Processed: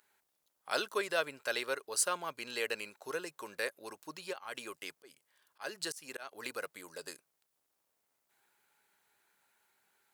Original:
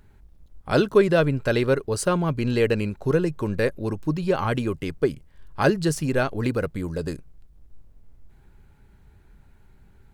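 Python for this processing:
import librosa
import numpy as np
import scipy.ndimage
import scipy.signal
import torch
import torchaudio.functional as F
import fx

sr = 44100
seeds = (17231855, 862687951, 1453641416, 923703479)

y = scipy.signal.sosfilt(scipy.signal.butter(2, 760.0, 'highpass', fs=sr, output='sos'), x)
y = fx.high_shelf(y, sr, hz=4800.0, db=11.0)
y = fx.auto_swell(y, sr, attack_ms=240.0, at=(4.32, 6.43), fade=0.02)
y = y * librosa.db_to_amplitude(-8.0)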